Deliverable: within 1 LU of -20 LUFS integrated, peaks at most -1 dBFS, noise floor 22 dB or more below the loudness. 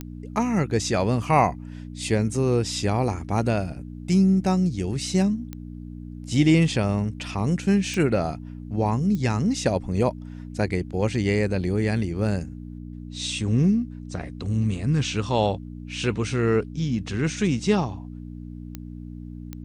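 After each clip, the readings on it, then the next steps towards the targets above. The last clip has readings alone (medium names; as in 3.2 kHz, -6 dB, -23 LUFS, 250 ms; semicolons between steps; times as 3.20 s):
clicks found 6; hum 60 Hz; highest harmonic 300 Hz; hum level -34 dBFS; loudness -24.0 LUFS; peak level -7.0 dBFS; loudness target -20.0 LUFS
-> de-click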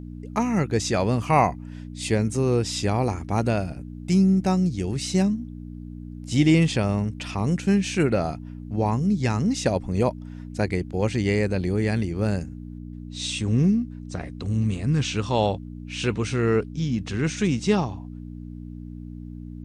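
clicks found 0; hum 60 Hz; highest harmonic 300 Hz; hum level -34 dBFS
-> de-hum 60 Hz, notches 5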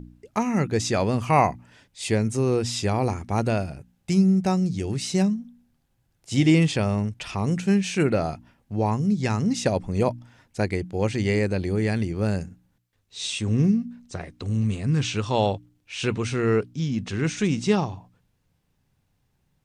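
hum not found; loudness -24.5 LUFS; peak level -7.5 dBFS; loudness target -20.0 LUFS
-> trim +4.5 dB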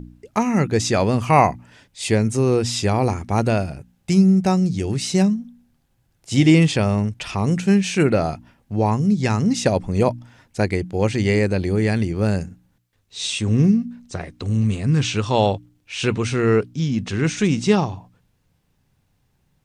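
loudness -20.0 LUFS; peak level -3.0 dBFS; noise floor -66 dBFS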